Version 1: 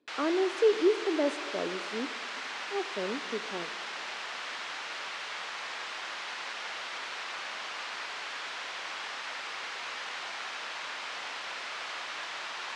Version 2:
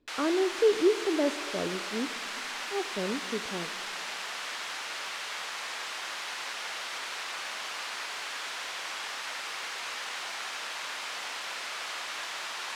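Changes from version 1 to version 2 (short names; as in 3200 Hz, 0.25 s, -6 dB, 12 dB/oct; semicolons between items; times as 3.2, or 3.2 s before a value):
speech: remove HPF 270 Hz 12 dB/oct; background: remove air absorption 91 m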